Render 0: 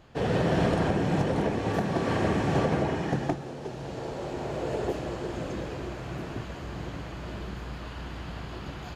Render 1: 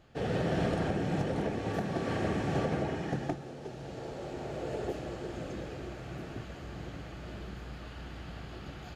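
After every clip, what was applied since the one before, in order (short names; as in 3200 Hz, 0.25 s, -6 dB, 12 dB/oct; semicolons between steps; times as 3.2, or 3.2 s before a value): notch 1000 Hz, Q 6.5; gain -5.5 dB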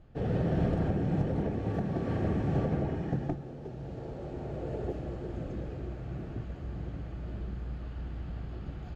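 tilt -3 dB/oct; gain -4.5 dB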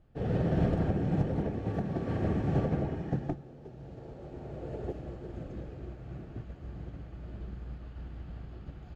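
upward expander 1.5:1, over -42 dBFS; gain +2 dB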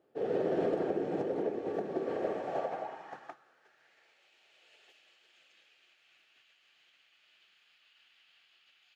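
high-pass sweep 400 Hz -> 2800 Hz, 2.02–4.37; gain -2 dB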